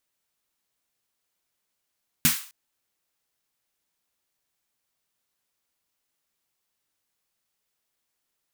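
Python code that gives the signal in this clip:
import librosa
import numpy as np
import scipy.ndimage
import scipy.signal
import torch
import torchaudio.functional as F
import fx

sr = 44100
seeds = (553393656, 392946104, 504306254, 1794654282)

y = fx.drum_snare(sr, seeds[0], length_s=0.26, hz=160.0, second_hz=240.0, noise_db=4.5, noise_from_hz=1100.0, decay_s=0.15, noise_decay_s=0.42)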